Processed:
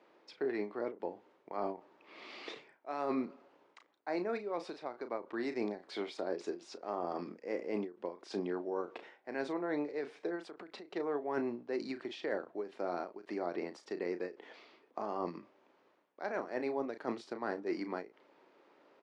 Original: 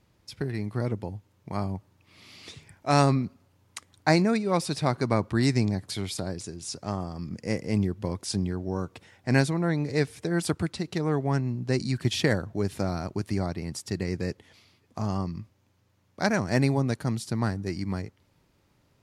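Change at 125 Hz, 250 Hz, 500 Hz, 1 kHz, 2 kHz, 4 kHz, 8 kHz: -29.5 dB, -12.5 dB, -6.5 dB, -9.0 dB, -11.5 dB, -16.0 dB, under -20 dB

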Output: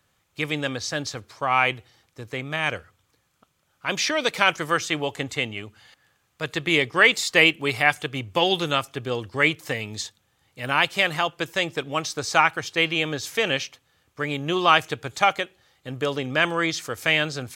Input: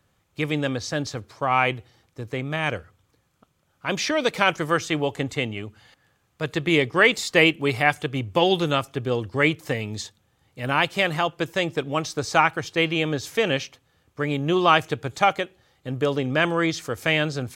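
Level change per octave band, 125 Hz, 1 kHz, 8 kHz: -4.5, -0.5, +3.0 dB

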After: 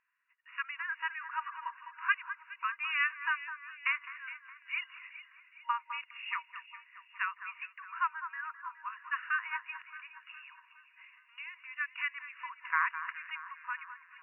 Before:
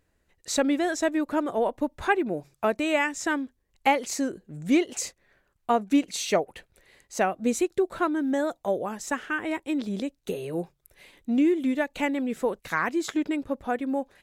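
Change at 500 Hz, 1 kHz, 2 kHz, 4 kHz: under -40 dB, -7.5 dB, -1.5 dB, -9.5 dB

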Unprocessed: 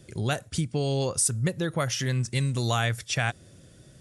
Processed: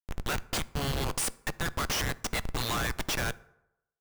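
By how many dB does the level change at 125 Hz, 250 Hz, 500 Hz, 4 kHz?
-10.0, -7.0, -7.5, -1.0 dB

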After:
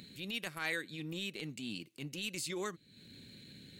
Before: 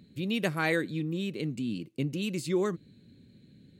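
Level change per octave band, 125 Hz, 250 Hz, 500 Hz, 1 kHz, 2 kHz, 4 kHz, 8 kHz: -13.0, -12.5, -12.5, -9.0, -5.5, -1.0, +1.0 dB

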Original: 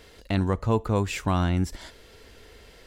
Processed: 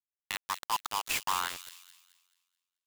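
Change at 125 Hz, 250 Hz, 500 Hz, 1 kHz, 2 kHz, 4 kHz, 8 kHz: -34.5, -29.5, -22.5, -1.5, -0.5, +3.0, +4.5 dB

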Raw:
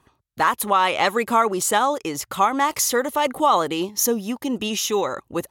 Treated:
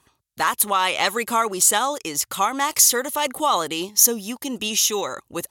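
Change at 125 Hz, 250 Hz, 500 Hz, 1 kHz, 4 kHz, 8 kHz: -4.5, -4.5, -4.0, -2.5, +4.0, +7.5 dB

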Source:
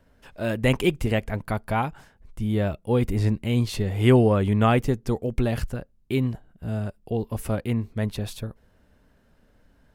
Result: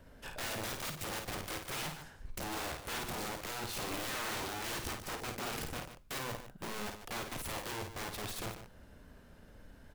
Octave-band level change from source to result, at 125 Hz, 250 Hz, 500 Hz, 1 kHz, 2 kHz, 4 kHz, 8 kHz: -23.5, -21.0, -18.5, -10.0, -7.0, -3.5, +2.5 dB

